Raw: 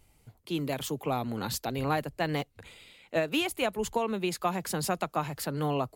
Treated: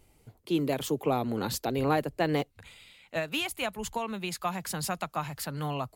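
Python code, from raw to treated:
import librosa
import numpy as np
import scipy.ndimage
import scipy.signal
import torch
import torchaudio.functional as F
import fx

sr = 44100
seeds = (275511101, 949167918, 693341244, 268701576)

y = fx.peak_eq(x, sr, hz=390.0, db=fx.steps((0.0, 6.0), (2.51, -8.5)), octaves=1.3)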